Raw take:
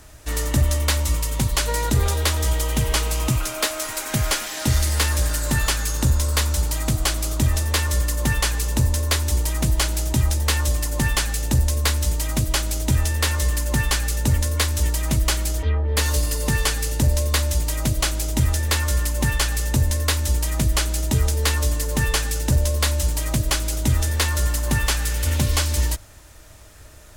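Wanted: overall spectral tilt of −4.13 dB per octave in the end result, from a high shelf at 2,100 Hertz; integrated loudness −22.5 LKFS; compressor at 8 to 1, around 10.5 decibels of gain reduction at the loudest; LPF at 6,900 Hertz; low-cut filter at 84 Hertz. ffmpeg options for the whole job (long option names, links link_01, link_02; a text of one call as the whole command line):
ffmpeg -i in.wav -af "highpass=84,lowpass=6900,highshelf=frequency=2100:gain=-3,acompressor=threshold=-27dB:ratio=8,volume=9dB" out.wav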